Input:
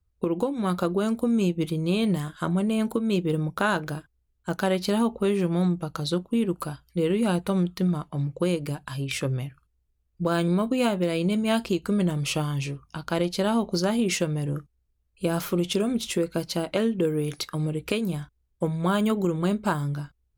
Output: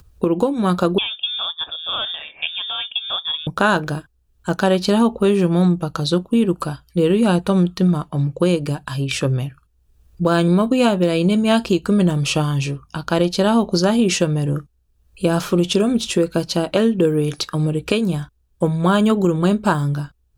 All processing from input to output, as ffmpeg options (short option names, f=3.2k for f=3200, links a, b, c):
-filter_complex "[0:a]asettb=1/sr,asplit=3[a][b][c];[a]atrim=end=0.984[d];[b]atrim=start=0.98:end=3.47,asetpts=PTS-STARTPTS,afade=t=in:d=0.004:c=qsin,afade=t=out:st=2.486:d=0.004:c=qsin,highpass=490,bandreject=f=730:w=6.5,lowpass=f=3.2k:t=q:w=0.5098,lowpass=f=3.2k:t=q:w=0.6013,lowpass=f=3.2k:t=q:w=0.9,lowpass=f=3.2k:t=q:w=2.563,afreqshift=-3800[e];[c]atrim=start=3.466[f];[d][e]acrossfade=d=0.004:c1=hsin:c2=qsin[g];[g][f]acrossfade=d=0.004:c1=qsin:c2=hsin,acrossover=split=9700[h][i];[i]acompressor=threshold=-57dB:ratio=4:attack=1:release=60[j];[h][j]amix=inputs=2:normalize=0,bandreject=f=2.1k:w=6.6,acompressor=mode=upward:threshold=-45dB:ratio=2.5,volume=8dB"